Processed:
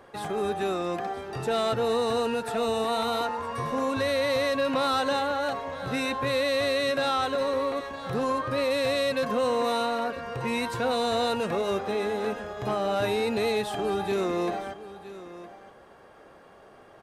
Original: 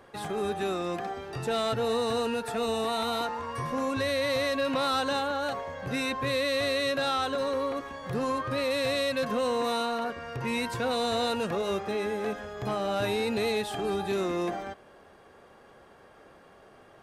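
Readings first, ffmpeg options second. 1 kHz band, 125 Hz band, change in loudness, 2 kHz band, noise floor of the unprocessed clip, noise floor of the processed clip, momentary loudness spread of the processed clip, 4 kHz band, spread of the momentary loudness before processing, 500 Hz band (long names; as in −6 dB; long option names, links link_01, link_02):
+2.5 dB, +0.5 dB, +2.0 dB, +1.0 dB, −55 dBFS, −52 dBFS, 8 LU, +0.5 dB, 7 LU, +2.5 dB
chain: -filter_complex "[0:a]equalizer=frequency=690:width=0.56:gain=3,asplit=2[link_01][link_02];[link_02]aecho=0:1:963:0.168[link_03];[link_01][link_03]amix=inputs=2:normalize=0"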